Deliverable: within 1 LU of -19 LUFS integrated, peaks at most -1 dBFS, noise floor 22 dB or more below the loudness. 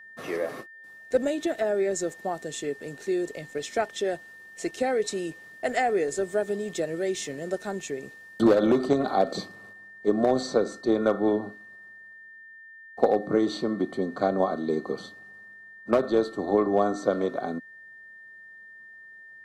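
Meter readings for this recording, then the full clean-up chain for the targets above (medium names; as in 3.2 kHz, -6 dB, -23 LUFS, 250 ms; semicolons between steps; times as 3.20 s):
steady tone 1.8 kHz; tone level -45 dBFS; loudness -27.0 LUFS; peak level -5.5 dBFS; loudness target -19.0 LUFS
-> band-stop 1.8 kHz, Q 30; trim +8 dB; peak limiter -1 dBFS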